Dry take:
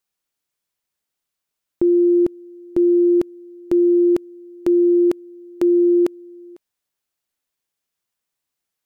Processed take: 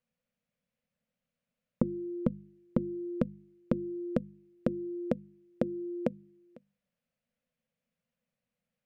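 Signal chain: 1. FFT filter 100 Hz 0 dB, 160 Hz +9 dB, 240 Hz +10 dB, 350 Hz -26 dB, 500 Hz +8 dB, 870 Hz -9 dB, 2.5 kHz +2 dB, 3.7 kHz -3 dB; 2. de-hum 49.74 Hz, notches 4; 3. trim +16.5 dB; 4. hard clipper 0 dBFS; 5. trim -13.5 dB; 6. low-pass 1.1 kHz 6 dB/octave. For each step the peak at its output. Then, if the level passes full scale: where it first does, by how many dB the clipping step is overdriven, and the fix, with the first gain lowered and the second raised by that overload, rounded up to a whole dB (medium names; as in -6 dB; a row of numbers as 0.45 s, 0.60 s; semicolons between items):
-12.0 dBFS, -12.5 dBFS, +4.0 dBFS, 0.0 dBFS, -13.5 dBFS, -13.5 dBFS; step 3, 4.0 dB; step 3 +12.5 dB, step 5 -9.5 dB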